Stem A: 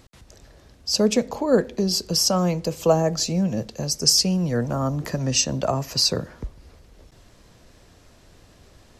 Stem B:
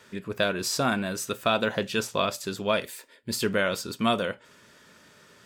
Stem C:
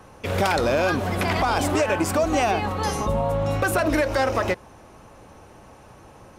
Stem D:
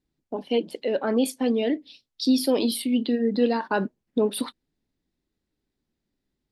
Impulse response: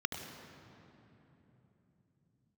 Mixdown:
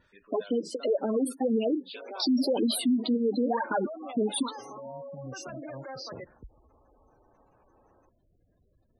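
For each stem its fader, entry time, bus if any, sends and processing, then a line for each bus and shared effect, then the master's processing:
-16.0 dB, 0.00 s, bus B, no send, auto duck -23 dB, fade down 0.20 s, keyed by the fourth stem
-12.0 dB, 0.00 s, bus A, no send, compression 6:1, threshold -27 dBFS, peak gain reduction 8 dB; high-pass 550 Hz 12 dB/octave
-15.5 dB, 1.70 s, bus B, no send, steep high-pass 230 Hz 96 dB/octave
-0.5 dB, 0.00 s, bus A, no send, loudest bins only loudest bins 64; phaser 1.9 Hz, delay 4.4 ms, feedback 73%
bus A: 0.0 dB, bass shelf 71 Hz -5 dB; peak limiter -14 dBFS, peak gain reduction 11.5 dB
bus B: 0.0 dB, peak limiter -31 dBFS, peak gain reduction 8.5 dB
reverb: none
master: spectral gate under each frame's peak -15 dB strong; peak limiter -19 dBFS, peak gain reduction 5.5 dB

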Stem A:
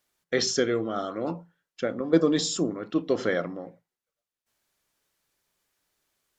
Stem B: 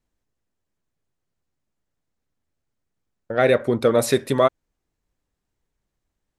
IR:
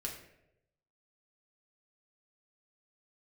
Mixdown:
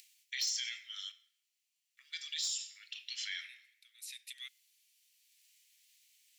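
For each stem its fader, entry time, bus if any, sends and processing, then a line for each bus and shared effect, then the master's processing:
+3.0 dB, 0.00 s, muted 1.12–1.97 s, send -4 dB, none
3.48 s -3 dB -> 3.73 s -10 dB, 0.00 s, send -23.5 dB, upward compressor, threshold -27 dBFS; auto duck -23 dB, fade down 0.45 s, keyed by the first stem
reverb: on, RT60 0.90 s, pre-delay 5 ms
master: steep high-pass 2.2 kHz 48 dB/octave; overload inside the chain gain 17 dB; peak limiter -28.5 dBFS, peak gain reduction 11.5 dB

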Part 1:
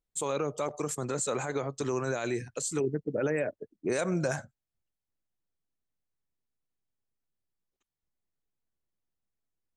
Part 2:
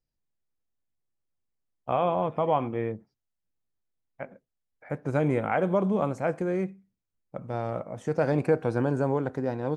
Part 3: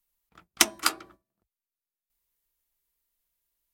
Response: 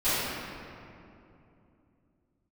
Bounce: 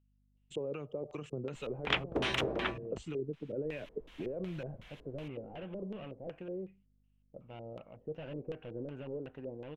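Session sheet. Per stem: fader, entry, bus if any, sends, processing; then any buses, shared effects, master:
-6.0 dB, 0.35 s, bus A, no send, bass shelf 320 Hz +10.5 dB
-16.0 dB, 0.00 s, bus A, no send, hum 50 Hz, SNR 27 dB; slew-rate limiter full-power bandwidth 28 Hz
+1.0 dB, 1.55 s, no bus, no send, treble shelf 2.9 kHz -5 dB; spectrum-flattening compressor 10:1
bus A: 0.0 dB, peaking EQ 2.8 kHz +13 dB 0.26 oct; compression 6:1, threshold -39 dBFS, peak gain reduction 13 dB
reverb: none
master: peaking EQ 4.6 kHz -4.5 dB 0.33 oct; LFO low-pass square 2.7 Hz 480–3000 Hz

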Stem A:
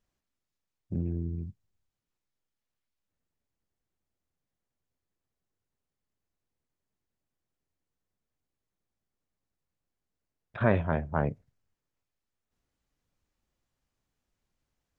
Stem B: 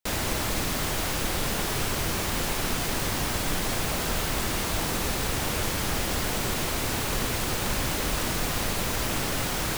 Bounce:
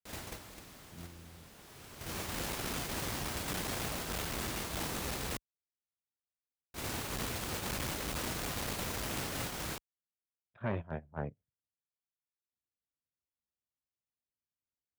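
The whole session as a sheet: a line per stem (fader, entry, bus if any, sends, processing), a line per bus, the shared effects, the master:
-7.0 dB, 0.00 s, no send, high-pass 45 Hz 12 dB/octave
-6.0 dB, 0.00 s, muted 5.37–6.74 s, no send, auto duck -8 dB, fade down 1.20 s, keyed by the first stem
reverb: none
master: gate -33 dBFS, range -14 dB; high-pass 44 Hz 12 dB/octave; transformer saturation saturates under 620 Hz

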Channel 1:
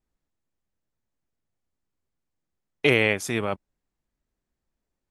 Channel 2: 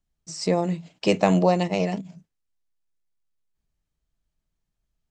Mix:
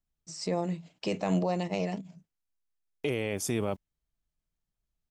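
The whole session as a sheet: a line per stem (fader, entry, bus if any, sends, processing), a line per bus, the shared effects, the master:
+1.0 dB, 0.20 s, no send, peaking EQ 1.7 kHz -11 dB 1.8 oct; band-stop 4 kHz, Q 6.7; bit crusher 11-bit
-6.5 dB, 0.00 s, no send, none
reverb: none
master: peak limiter -19 dBFS, peak gain reduction 10.5 dB

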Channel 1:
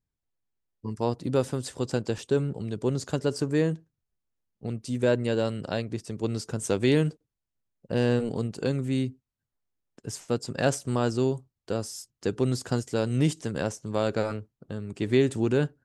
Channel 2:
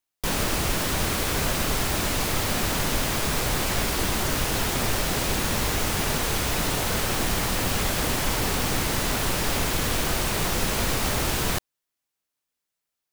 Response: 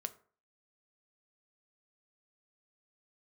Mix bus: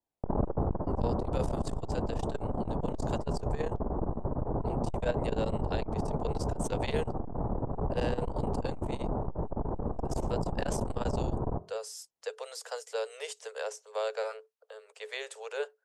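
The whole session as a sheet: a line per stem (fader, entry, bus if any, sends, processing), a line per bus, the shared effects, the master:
-4.0 dB, 0.00 s, no send, Chebyshev high-pass 430 Hz, order 10; vibrato 0.5 Hz 31 cents
+2.5 dB, 0.00 s, send -9.5 dB, steep low-pass 930 Hz 36 dB/octave; auto duck -8 dB, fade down 1.70 s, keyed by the first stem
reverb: on, RT60 0.45 s, pre-delay 4 ms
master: transformer saturation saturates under 160 Hz

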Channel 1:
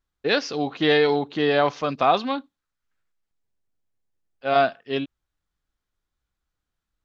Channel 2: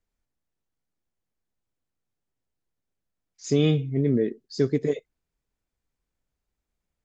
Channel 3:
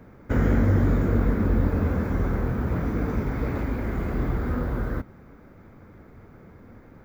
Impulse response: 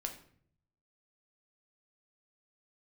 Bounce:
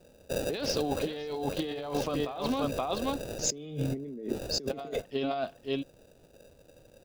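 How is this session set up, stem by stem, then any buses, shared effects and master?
-6.0 dB, 0.25 s, no send, echo send -6 dB, none
+3.0 dB, 0.00 s, no send, no echo send, steep high-pass 160 Hz 36 dB/octave
-7.0 dB, 0.00 s, no send, no echo send, elliptic high-pass 510 Hz; comb 2 ms, depth 54%; sample-and-hold 41×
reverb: none
echo: delay 525 ms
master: compressor with a negative ratio -33 dBFS, ratio -1; peaking EQ 1.7 kHz -9 dB 0.83 oct

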